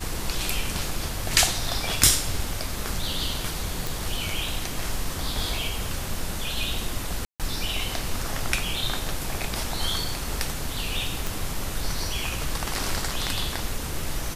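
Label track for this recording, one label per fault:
3.870000	3.870000	pop
7.250000	7.400000	dropout 147 ms
11.270000	11.270000	pop

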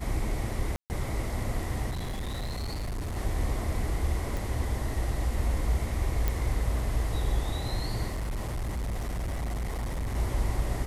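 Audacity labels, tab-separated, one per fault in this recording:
0.760000	0.900000	dropout 139 ms
1.910000	3.160000	clipped -30 dBFS
4.370000	4.370000	pop
6.280000	6.280000	pop
8.070000	10.160000	clipped -28.5 dBFS

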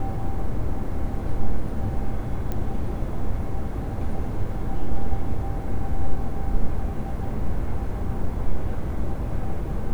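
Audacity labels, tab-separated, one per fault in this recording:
2.520000	2.520000	pop -16 dBFS

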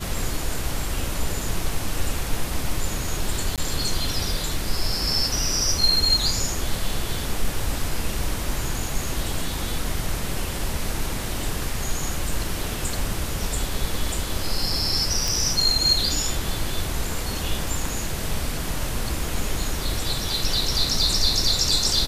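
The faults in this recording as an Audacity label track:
3.560000	3.580000	dropout 17 ms
15.280000	15.280000	pop

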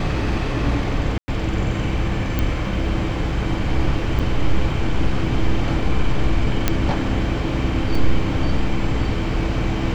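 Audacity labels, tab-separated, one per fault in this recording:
1.180000	1.280000	dropout 100 ms
2.390000	2.390000	pop -8 dBFS
4.190000	4.200000	dropout 6.5 ms
6.680000	6.680000	pop -2 dBFS
7.950000	7.950000	dropout 3.4 ms

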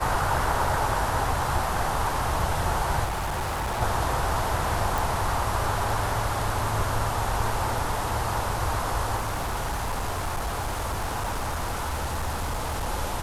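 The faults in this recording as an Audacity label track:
3.040000	3.820000	clipped -25.5 dBFS
4.980000	4.980000	pop
9.160000	12.890000	clipped -24.5 dBFS

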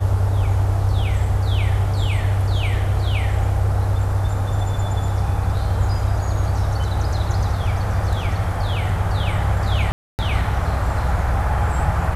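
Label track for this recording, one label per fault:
9.920000	10.190000	dropout 269 ms

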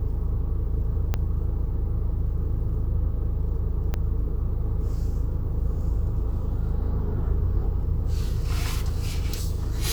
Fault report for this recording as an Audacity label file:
1.140000	1.140000	pop -12 dBFS
3.940000	3.940000	pop -14 dBFS

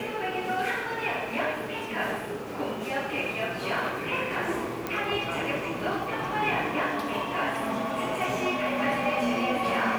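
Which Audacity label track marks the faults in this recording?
4.870000	4.870000	pop -15 dBFS

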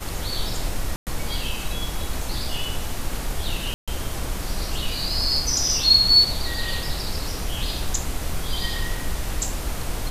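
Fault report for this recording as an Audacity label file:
0.960000	1.070000	dropout 108 ms
3.740000	3.880000	dropout 136 ms

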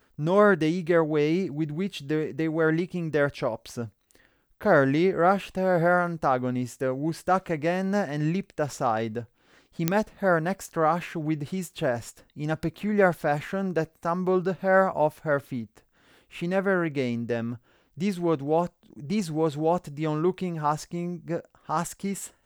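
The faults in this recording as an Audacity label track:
5.480000	5.480000	dropout 2.1 ms
9.880000	9.880000	pop -7 dBFS

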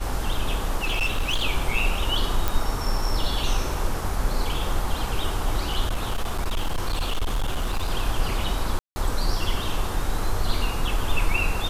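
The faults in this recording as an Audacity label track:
0.830000	1.430000	clipped -19 dBFS
2.480000	2.480000	pop
5.870000	7.900000	clipped -20 dBFS
8.790000	8.960000	dropout 170 ms

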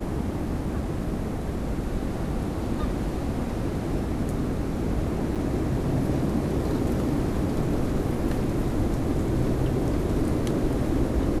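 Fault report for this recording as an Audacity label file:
5.350000	5.360000	dropout 7.1 ms

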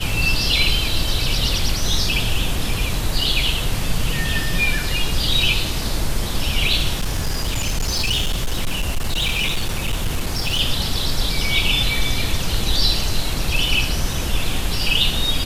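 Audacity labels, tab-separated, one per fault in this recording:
6.930000	10.610000	clipped -16 dBFS

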